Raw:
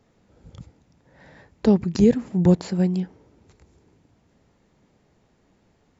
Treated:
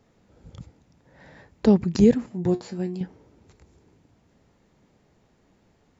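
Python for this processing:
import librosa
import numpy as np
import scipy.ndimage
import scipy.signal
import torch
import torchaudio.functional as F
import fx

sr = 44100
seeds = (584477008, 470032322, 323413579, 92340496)

y = fx.comb_fb(x, sr, f0_hz=120.0, decay_s=0.18, harmonics='all', damping=0.0, mix_pct=80, at=(2.26, 3.01))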